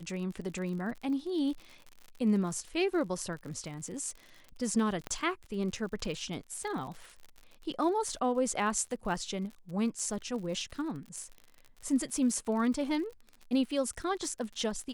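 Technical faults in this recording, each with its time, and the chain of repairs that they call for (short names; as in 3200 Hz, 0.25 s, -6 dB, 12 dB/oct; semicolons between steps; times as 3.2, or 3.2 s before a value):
crackle 55/s -40 dBFS
5.07 pop -22 dBFS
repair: de-click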